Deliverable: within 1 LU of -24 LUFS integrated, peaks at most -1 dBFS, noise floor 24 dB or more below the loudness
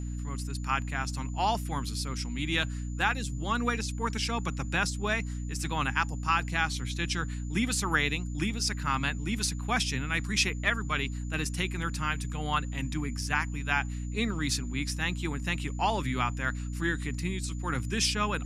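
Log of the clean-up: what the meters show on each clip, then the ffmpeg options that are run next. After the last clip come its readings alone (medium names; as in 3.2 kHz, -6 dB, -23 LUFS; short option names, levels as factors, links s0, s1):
hum 60 Hz; highest harmonic 300 Hz; hum level -32 dBFS; steady tone 7 kHz; tone level -52 dBFS; loudness -30.5 LUFS; peak level -12.0 dBFS; loudness target -24.0 LUFS
-> -af "bandreject=f=60:t=h:w=6,bandreject=f=120:t=h:w=6,bandreject=f=180:t=h:w=6,bandreject=f=240:t=h:w=6,bandreject=f=300:t=h:w=6"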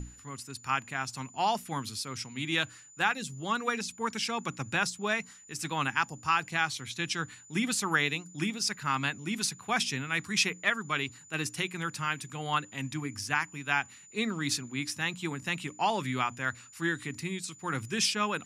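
hum not found; steady tone 7 kHz; tone level -52 dBFS
-> -af "bandreject=f=7000:w=30"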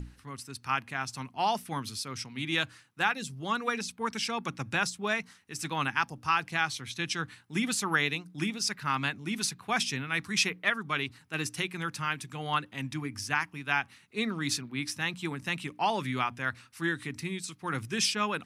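steady tone not found; loudness -31.5 LUFS; peak level -12.5 dBFS; loudness target -24.0 LUFS
-> -af "volume=2.37"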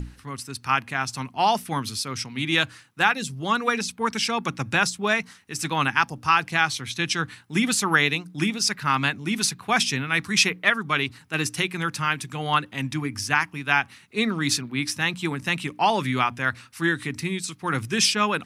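loudness -24.0 LUFS; peak level -5.0 dBFS; noise floor -52 dBFS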